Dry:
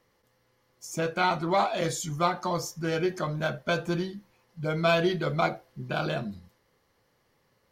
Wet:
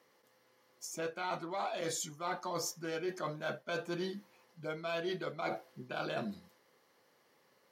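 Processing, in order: high-pass 250 Hz 12 dB/octave; reverse; compression 12:1, threshold -35 dBFS, peak gain reduction 16.5 dB; reverse; trim +1 dB

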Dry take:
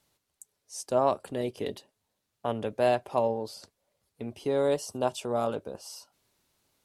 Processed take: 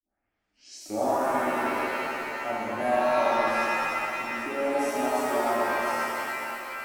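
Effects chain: tape start-up on the opening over 1.10 s; static phaser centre 710 Hz, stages 8; pitch-shifted reverb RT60 3.2 s, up +7 st, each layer -2 dB, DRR -7 dB; trim -4 dB

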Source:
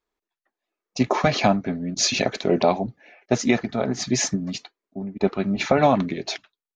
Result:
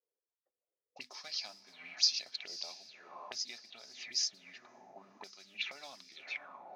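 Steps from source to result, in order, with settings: band-stop 6.8 kHz, Q 29; echo that smears into a reverb 541 ms, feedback 54%, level -15 dB; modulation noise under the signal 28 dB; hum notches 50/100/150/200/250 Hz; auto-wah 500–5000 Hz, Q 7.9, up, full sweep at -20 dBFS

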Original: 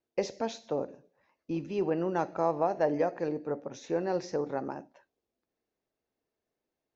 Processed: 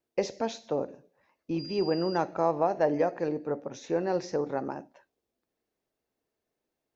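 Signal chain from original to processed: 1.58–2.16 s: whistle 4.8 kHz -43 dBFS; trim +2 dB

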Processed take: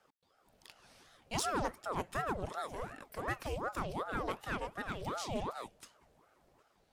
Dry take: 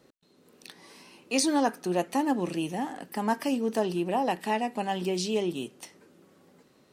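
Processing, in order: Chebyshev shaper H 8 -24 dB, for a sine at -7 dBFS; ring modulator with a swept carrier 620 Hz, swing 70%, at 2.7 Hz; trim -7 dB

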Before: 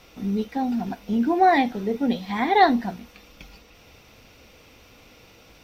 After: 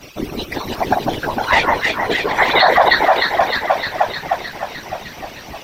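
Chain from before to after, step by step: harmonic-percussive separation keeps percussive; 1.27–2.38 s: valve stage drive 19 dB, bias 0.75; echo whose repeats swap between lows and highs 153 ms, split 1.6 kHz, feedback 83%, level -3 dB; whisper effect; loudness maximiser +19 dB; trim -1 dB

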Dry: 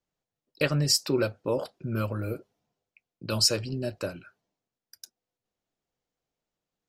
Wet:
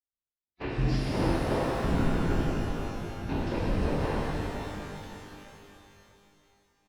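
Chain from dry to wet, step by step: cycle switcher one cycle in 2, inverted; gate -50 dBFS, range -24 dB; bass shelf 140 Hz +9 dB; compression 4:1, threshold -23 dBFS, peak gain reduction 6 dB; peak limiter -20.5 dBFS, peak gain reduction 7.5 dB; trance gate "xx..xx.xxxxx" 134 bpm -24 dB; formant-preserving pitch shift -9 st; distance through air 280 m; delay 574 ms -14 dB; pitch-shifted reverb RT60 3 s, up +12 st, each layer -8 dB, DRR -8 dB; trim -3 dB

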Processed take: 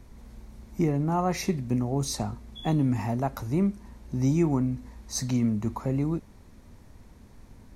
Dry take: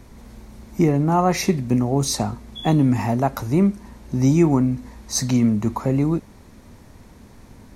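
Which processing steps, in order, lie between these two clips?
bass shelf 78 Hz +8 dB; trim -8.5 dB

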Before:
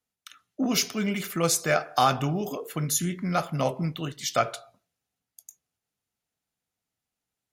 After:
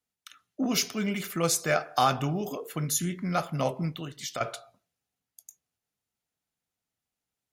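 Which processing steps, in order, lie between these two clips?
3.89–4.41 s: compression 6:1, threshold -31 dBFS, peak gain reduction 12.5 dB; trim -2 dB

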